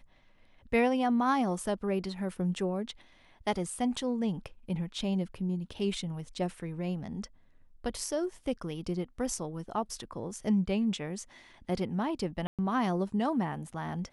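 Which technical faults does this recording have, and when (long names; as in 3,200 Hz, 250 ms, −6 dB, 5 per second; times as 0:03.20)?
0:12.47–0:12.59: drop-out 117 ms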